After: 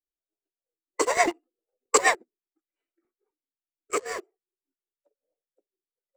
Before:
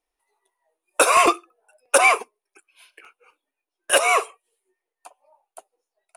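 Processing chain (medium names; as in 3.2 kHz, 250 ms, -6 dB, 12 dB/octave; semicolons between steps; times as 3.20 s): local Wiener filter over 41 samples; rotary cabinet horn 8 Hz, later 0.6 Hz, at 2.46 s; formant shift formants -4 st; in parallel at -9 dB: small samples zeroed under -24 dBFS; on the sum: upward expansion 1.5:1, over -33 dBFS; trim -3 dB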